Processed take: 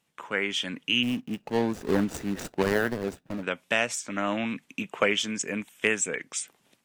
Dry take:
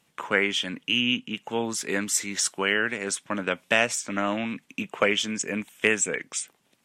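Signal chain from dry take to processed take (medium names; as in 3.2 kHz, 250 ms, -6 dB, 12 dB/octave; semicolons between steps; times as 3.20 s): 1.03–3.43 s: median filter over 41 samples; level rider gain up to 15 dB; trim -7.5 dB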